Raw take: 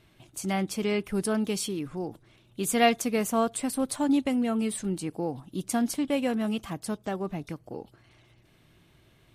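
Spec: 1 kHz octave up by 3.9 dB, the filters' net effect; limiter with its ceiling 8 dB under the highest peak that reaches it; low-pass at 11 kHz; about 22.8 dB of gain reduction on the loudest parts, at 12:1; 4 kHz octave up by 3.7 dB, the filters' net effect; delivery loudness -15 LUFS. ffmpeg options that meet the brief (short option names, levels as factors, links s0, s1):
-af "lowpass=11000,equalizer=f=1000:t=o:g=6,equalizer=f=4000:t=o:g=5,acompressor=threshold=0.0141:ratio=12,volume=26.6,alimiter=limit=0.596:level=0:latency=1"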